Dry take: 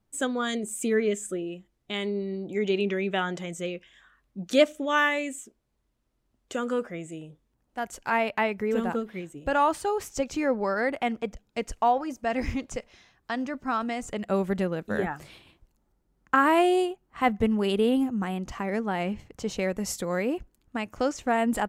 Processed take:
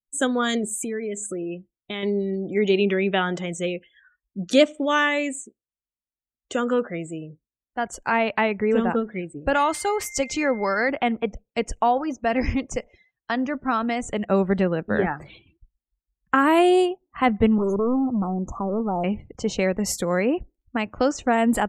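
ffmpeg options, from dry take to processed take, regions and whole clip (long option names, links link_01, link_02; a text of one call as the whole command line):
ffmpeg -i in.wav -filter_complex "[0:a]asettb=1/sr,asplit=3[link_01][link_02][link_03];[link_01]atrim=end=0.814[link_04];[link_02]atrim=start=0.81:end=2.03,asetpts=PTS-STARTPTS,afade=type=in:duration=0.004:curve=qsin,afade=type=out:start_time=1.216:duration=0.004:curve=qsin,bandreject=frequency=2900:width=14,acompressor=threshold=-32dB:ratio=6:attack=3.2:release=140:knee=1:detection=peak[link_05];[link_03]atrim=start=2.026[link_06];[link_04][link_05]acrossfade=duration=0.004:curve1=hsin:curve2=qsin[link_07];[link_07][link_06]acrossfade=duration=0.004:curve1=qsin:curve2=hsin,asettb=1/sr,asplit=3[link_08][link_09][link_10];[link_08]atrim=end=9.544[link_11];[link_09]atrim=start=9.54:end=10.89,asetpts=PTS-STARTPTS,afade=type=in:duration=0.004:curve=qsin,afade=type=out:start_time=1.346:duration=0.004:curve=qsin,tiltshelf=frequency=1200:gain=-4,aeval=exprs='val(0)+0.00562*sin(2*PI*2100*n/s)':channel_layout=same[link_12];[link_10]atrim=start=10.886[link_13];[link_11][link_12]acrossfade=duration=0.004:curve1=hsin:curve2=qsin[link_14];[link_14][link_13]acrossfade=duration=0.004:curve1=qsin:curve2=hsin,asettb=1/sr,asplit=3[link_15][link_16][link_17];[link_15]atrim=end=17.584[link_18];[link_16]atrim=start=17.58:end=19.04,asetpts=PTS-STARTPTS,afade=type=in:duration=0.004:curve=qsin,afade=type=out:start_time=1.456:duration=0.004:curve=qsin,volume=25.5dB,asoftclip=hard,volume=-25.5dB,asuperstop=centerf=2900:order=20:qfactor=0.6[link_19];[link_17]atrim=start=19.036[link_20];[link_18][link_19]acrossfade=duration=0.004:curve1=hsin:curve2=qsin[link_21];[link_21][link_20]acrossfade=duration=0.004:curve1=qsin:curve2=hsin,afftdn=noise_reduction=35:noise_floor=-49,acrossover=split=450|3000[link_22][link_23][link_24];[link_23]acompressor=threshold=-27dB:ratio=2[link_25];[link_22][link_25][link_24]amix=inputs=3:normalize=0,volume=6dB" out.wav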